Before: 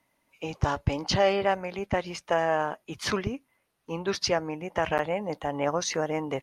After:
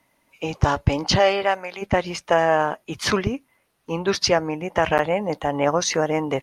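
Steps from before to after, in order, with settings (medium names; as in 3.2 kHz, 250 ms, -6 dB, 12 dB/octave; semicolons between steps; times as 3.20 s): 1.18–1.81 s: high-pass 410 Hz -> 1.2 kHz 6 dB/octave; trim +7 dB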